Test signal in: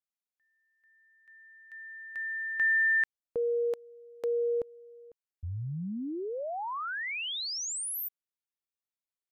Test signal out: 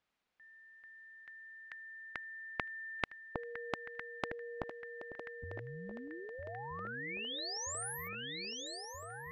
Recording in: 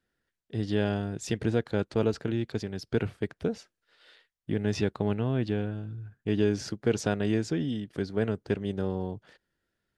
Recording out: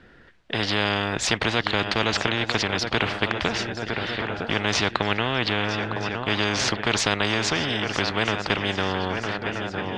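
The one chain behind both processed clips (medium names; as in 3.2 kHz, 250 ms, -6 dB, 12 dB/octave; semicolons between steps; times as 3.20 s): low-pass 3 kHz 12 dB/octave; shuffle delay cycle 1277 ms, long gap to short 3:1, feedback 45%, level -17 dB; spectrum-flattening compressor 4:1; trim +8 dB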